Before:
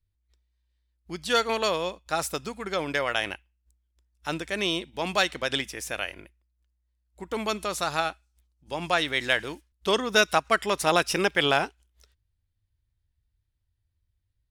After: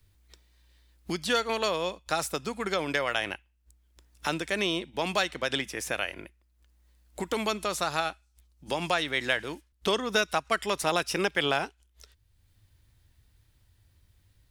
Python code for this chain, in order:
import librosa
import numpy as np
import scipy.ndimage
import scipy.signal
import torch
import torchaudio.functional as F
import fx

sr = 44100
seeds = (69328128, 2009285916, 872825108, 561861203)

y = fx.band_squash(x, sr, depth_pct=70)
y = F.gain(torch.from_numpy(y), -2.5).numpy()